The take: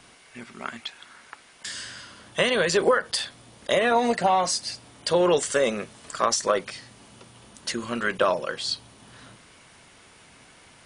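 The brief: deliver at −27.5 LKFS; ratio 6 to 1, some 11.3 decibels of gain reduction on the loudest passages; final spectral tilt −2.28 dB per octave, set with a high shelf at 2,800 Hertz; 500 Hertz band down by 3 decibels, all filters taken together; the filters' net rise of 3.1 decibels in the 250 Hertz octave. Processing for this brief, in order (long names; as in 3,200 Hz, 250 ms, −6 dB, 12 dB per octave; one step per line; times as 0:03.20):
parametric band 250 Hz +5.5 dB
parametric band 500 Hz −5 dB
high-shelf EQ 2,800 Hz +3.5 dB
downward compressor 6 to 1, threshold −30 dBFS
level +7 dB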